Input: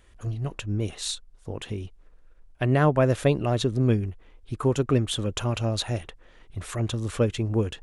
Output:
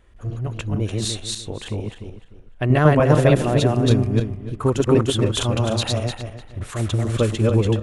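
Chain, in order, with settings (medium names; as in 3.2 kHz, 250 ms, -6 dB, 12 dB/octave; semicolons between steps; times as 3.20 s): backward echo that repeats 150 ms, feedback 47%, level -0.5 dB; tape noise reduction on one side only decoder only; trim +3 dB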